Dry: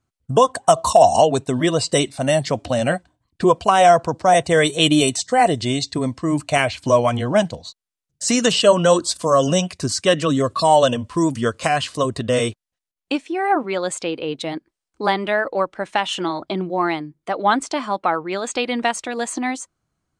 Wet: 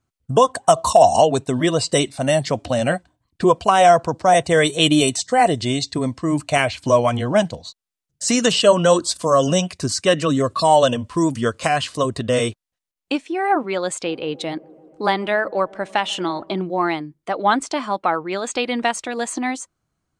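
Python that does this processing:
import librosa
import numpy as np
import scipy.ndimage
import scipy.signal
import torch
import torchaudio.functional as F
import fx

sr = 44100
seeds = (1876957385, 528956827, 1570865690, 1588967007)

y = fx.notch(x, sr, hz=3300.0, q=12.0, at=(9.94, 10.52))
y = fx.echo_wet_lowpass(y, sr, ms=145, feedback_pct=76, hz=680.0, wet_db=-22.0, at=(14.02, 16.59), fade=0.02)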